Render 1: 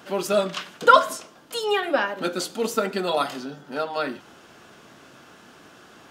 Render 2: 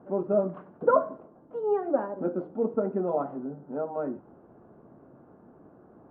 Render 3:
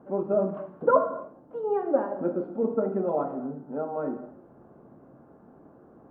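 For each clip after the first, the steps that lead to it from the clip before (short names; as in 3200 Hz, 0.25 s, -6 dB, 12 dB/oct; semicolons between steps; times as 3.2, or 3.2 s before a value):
Bessel low-pass 600 Hz, order 4
non-linear reverb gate 0.31 s falling, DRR 5.5 dB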